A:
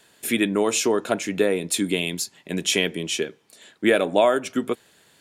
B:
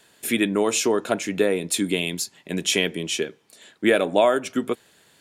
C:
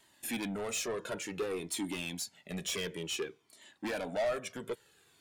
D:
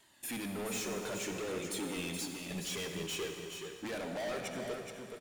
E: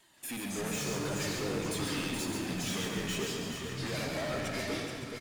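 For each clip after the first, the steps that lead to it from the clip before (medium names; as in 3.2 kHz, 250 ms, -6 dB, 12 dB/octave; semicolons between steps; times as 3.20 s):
no audible change
saturation -22.5 dBFS, distortion -7 dB; Shepard-style flanger falling 0.56 Hz; trim -4 dB
hard clipper -37 dBFS, distortion -8 dB; delay 424 ms -6.5 dB; reverberation RT60 2.6 s, pre-delay 48 ms, DRR 5 dB
flange 0.57 Hz, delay 5.4 ms, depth 6.2 ms, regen +67%; ever faster or slower copies 174 ms, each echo -6 st, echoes 2; delay 137 ms -6 dB; trim +5 dB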